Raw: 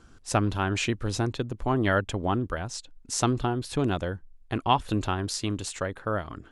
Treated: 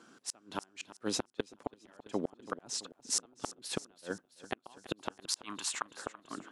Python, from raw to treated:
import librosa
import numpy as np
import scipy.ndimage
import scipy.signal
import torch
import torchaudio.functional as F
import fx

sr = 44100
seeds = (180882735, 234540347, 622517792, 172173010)

p1 = scipy.signal.sosfilt(scipy.signal.butter(4, 200.0, 'highpass', fs=sr, output='sos'), x)
p2 = fx.low_shelf_res(p1, sr, hz=700.0, db=-11.0, q=3.0, at=(5.25, 5.84))
p3 = fx.gate_flip(p2, sr, shuts_db=-18.0, range_db=-38)
p4 = p3 + fx.echo_feedback(p3, sr, ms=333, feedback_pct=59, wet_db=-16.0, dry=0)
y = fx.upward_expand(p4, sr, threshold_db=-53.0, expansion=1.5, at=(1.22, 1.88))